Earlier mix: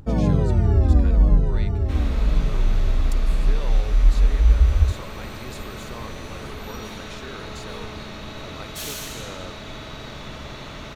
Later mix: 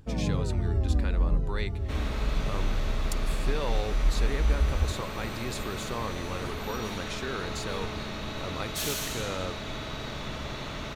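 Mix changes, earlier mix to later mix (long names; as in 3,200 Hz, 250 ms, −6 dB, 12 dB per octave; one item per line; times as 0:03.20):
speech +4.5 dB
first sound −9.5 dB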